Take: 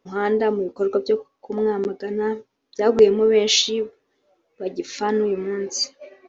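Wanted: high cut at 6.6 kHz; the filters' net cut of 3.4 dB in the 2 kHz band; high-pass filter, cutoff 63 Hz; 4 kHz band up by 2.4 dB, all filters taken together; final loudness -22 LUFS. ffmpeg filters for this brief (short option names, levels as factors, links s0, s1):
-af "highpass=63,lowpass=6600,equalizer=f=2000:t=o:g=-6,equalizer=f=4000:t=o:g=5,volume=0.891"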